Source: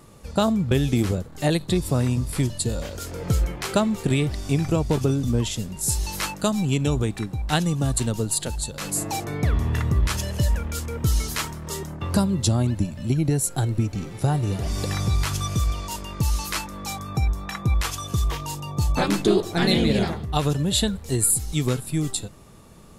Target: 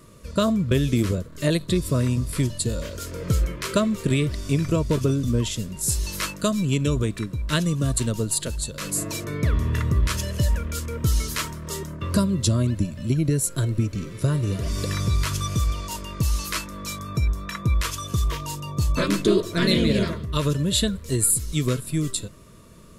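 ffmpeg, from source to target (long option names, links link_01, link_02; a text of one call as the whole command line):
ffmpeg -i in.wav -af "asuperstop=centerf=790:order=12:qfactor=3.4" out.wav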